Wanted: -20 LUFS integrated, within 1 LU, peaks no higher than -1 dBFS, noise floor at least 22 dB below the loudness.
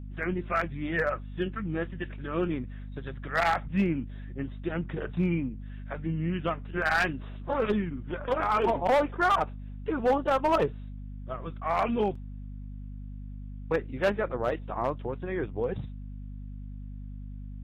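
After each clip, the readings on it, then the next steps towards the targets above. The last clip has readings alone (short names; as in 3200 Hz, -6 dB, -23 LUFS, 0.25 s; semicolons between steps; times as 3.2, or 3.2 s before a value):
clipped 0.6%; flat tops at -18.5 dBFS; hum 50 Hz; harmonics up to 250 Hz; hum level -37 dBFS; loudness -29.5 LUFS; peak -18.5 dBFS; loudness target -20.0 LUFS
-> clip repair -18.5 dBFS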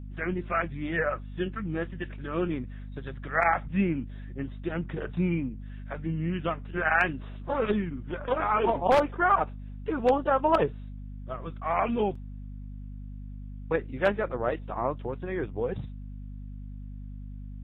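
clipped 0.0%; hum 50 Hz; harmonics up to 250 Hz; hum level -37 dBFS
-> de-hum 50 Hz, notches 5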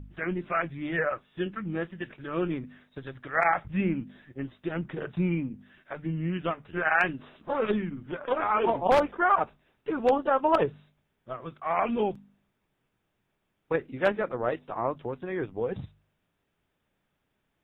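hum none; loudness -29.0 LUFS; peak -9.0 dBFS; loudness target -20.0 LUFS
-> gain +9 dB; limiter -1 dBFS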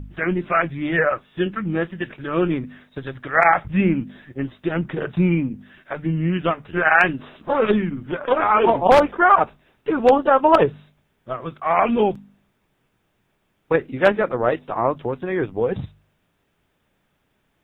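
loudness -20.0 LUFS; peak -1.0 dBFS; noise floor -69 dBFS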